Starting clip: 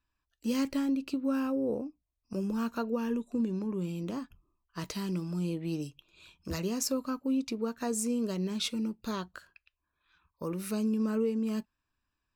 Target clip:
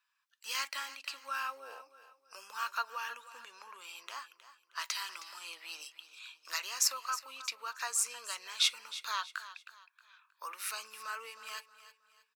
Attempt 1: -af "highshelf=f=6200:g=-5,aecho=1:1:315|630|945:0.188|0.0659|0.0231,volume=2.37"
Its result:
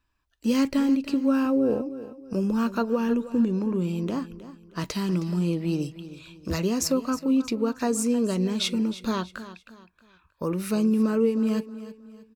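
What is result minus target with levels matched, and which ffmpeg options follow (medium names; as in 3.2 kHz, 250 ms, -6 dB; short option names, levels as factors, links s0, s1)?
1 kHz band -7.0 dB
-af "highpass=f=1100:w=0.5412,highpass=f=1100:w=1.3066,highshelf=f=6200:g=-5,aecho=1:1:315|630|945:0.188|0.0659|0.0231,volume=2.37"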